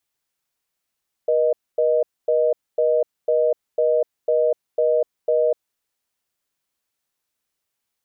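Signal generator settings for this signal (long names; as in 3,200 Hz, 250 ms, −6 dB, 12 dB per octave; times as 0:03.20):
call progress tone reorder tone, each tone −18 dBFS 4.38 s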